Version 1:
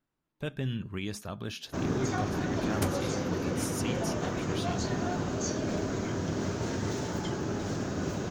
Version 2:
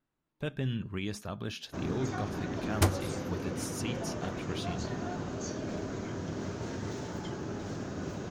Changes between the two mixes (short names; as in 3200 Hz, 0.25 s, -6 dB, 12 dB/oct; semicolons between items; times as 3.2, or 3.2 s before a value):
first sound -5.0 dB; second sound +7.5 dB; master: add high shelf 7200 Hz -5.5 dB